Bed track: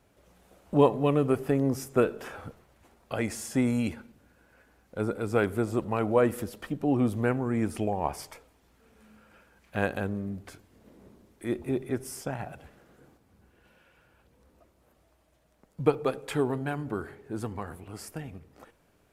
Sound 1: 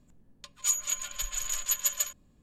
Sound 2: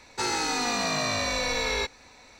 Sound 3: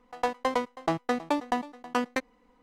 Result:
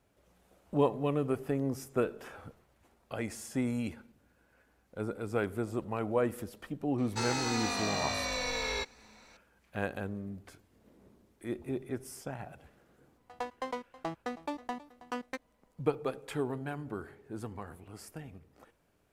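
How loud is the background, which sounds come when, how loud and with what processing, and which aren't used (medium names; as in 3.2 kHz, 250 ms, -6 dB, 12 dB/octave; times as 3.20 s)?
bed track -6.5 dB
6.98 s: add 2 -6.5 dB
13.17 s: add 3 -10 dB
not used: 1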